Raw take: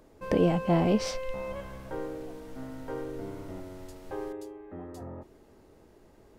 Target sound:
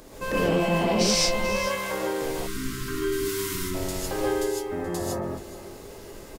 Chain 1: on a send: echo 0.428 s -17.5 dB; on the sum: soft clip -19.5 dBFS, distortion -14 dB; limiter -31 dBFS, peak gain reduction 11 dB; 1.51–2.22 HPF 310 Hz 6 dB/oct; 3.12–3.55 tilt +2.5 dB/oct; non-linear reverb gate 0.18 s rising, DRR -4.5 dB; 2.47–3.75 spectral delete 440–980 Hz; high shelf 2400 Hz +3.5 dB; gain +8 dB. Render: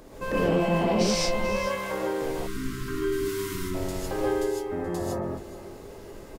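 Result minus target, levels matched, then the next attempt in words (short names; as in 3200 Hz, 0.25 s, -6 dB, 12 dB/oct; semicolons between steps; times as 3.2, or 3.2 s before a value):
4000 Hz band -4.0 dB
on a send: echo 0.428 s -17.5 dB; on the sum: soft clip -19.5 dBFS, distortion -14 dB; limiter -31 dBFS, peak gain reduction 11 dB; 1.51–2.22 HPF 310 Hz 6 dB/oct; 3.12–3.55 tilt +2.5 dB/oct; non-linear reverb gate 0.18 s rising, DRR -4.5 dB; 2.47–3.75 spectral delete 440–980 Hz; high shelf 2400 Hz +11 dB; gain +8 dB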